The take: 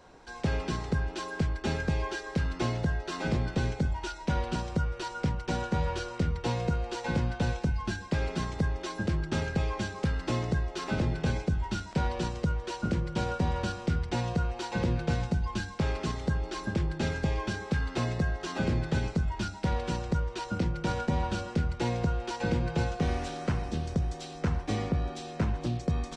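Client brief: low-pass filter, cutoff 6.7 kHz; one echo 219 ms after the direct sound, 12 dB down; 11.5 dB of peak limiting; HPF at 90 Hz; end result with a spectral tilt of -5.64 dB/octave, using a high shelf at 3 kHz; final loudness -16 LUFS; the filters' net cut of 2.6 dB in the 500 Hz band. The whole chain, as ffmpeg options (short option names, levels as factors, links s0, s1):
-af "highpass=90,lowpass=6700,equalizer=f=500:t=o:g=-3,highshelf=f=3000:g=-7,alimiter=level_in=1.78:limit=0.0631:level=0:latency=1,volume=0.562,aecho=1:1:219:0.251,volume=13.3"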